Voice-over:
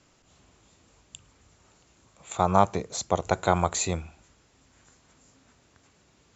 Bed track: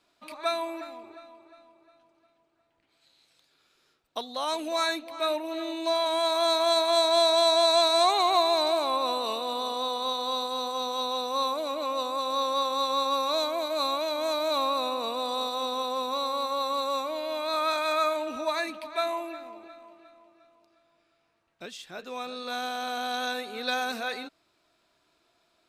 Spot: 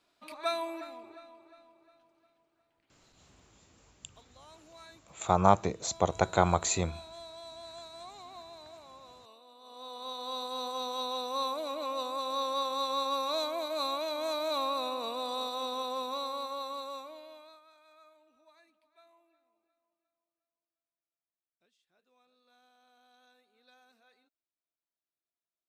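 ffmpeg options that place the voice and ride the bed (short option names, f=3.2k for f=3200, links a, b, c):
-filter_complex "[0:a]adelay=2900,volume=-2dB[a];[1:a]volume=17dB,afade=t=out:st=2.78:d=0.93:silence=0.0794328,afade=t=in:st=9.6:d=1.05:silence=0.0944061,afade=t=out:st=15.96:d=1.65:silence=0.0354813[b];[a][b]amix=inputs=2:normalize=0"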